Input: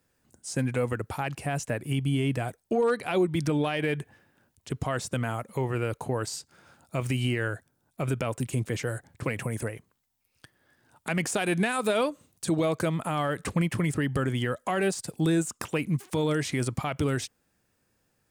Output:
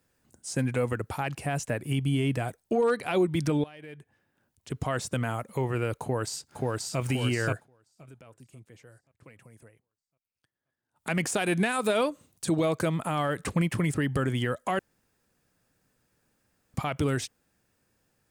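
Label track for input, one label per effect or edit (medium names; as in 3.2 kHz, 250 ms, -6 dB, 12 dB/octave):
3.640000	4.890000	fade in quadratic, from -19 dB
6.020000	6.990000	echo throw 530 ms, feedback 50%, level -0.5 dB
7.530000	11.090000	dip -22 dB, fades 0.15 s
14.790000	16.740000	room tone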